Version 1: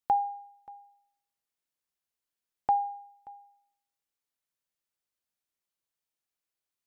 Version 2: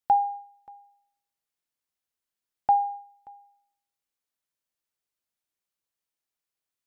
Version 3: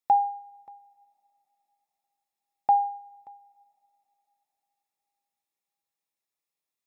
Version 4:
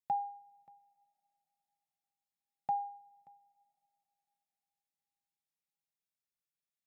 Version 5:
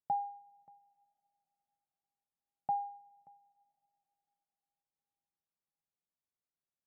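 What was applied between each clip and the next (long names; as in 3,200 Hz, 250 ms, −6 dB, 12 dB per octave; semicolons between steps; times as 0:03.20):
dynamic equaliser 700 Hz, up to +5 dB, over −39 dBFS, Q 0.85
notch comb filter 1,500 Hz; coupled-rooms reverb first 0.2 s, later 4 s, from −22 dB, DRR 20 dB
graphic EQ with 15 bands 160 Hz +11 dB, 400 Hz −7 dB, 1,000 Hz −7 dB; level −8.5 dB
low-pass filter 1,100 Hz 12 dB per octave; level +1 dB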